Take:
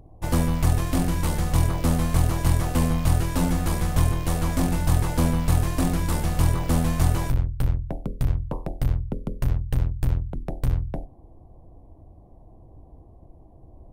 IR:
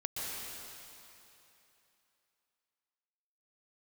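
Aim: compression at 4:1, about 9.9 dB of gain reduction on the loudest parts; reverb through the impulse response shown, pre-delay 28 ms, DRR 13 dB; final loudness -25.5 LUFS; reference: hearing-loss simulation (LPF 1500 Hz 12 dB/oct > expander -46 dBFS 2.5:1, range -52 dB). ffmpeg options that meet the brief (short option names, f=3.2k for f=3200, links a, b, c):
-filter_complex "[0:a]acompressor=threshold=-27dB:ratio=4,asplit=2[a][b];[1:a]atrim=start_sample=2205,adelay=28[c];[b][c]afir=irnorm=-1:irlink=0,volume=-16.5dB[d];[a][d]amix=inputs=2:normalize=0,lowpass=1.5k,agate=range=-52dB:threshold=-46dB:ratio=2.5,volume=7.5dB"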